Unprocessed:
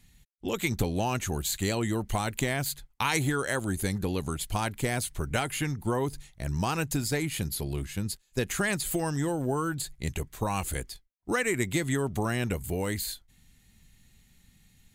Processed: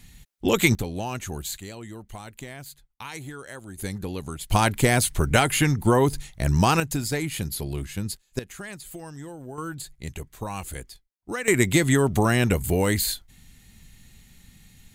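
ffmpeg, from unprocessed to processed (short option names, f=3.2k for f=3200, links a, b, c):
-af "asetnsamples=n=441:p=0,asendcmd='0.75 volume volume -2dB;1.6 volume volume -10.5dB;3.78 volume volume -2dB;4.51 volume volume 9.5dB;6.8 volume volume 2dB;8.39 volume volume -10dB;9.58 volume volume -3dB;11.48 volume volume 8.5dB',volume=10dB"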